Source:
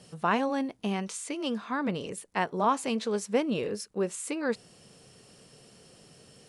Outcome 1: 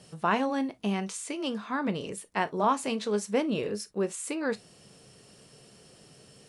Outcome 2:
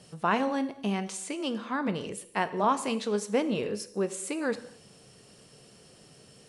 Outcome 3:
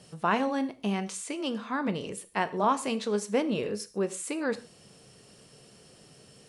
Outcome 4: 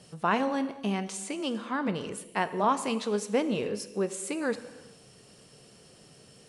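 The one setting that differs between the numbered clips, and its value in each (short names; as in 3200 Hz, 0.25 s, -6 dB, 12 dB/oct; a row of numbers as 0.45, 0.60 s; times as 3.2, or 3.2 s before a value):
non-linear reverb, gate: 80, 290, 170, 460 ms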